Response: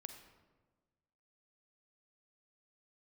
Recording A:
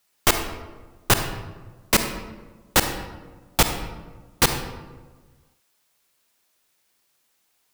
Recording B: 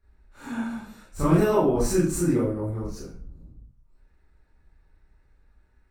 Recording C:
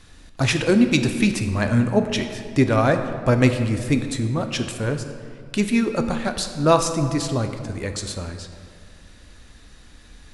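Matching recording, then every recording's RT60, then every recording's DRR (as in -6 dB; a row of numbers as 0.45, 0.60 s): A; 1.4, 0.50, 2.3 s; 6.5, -9.5, 7.0 dB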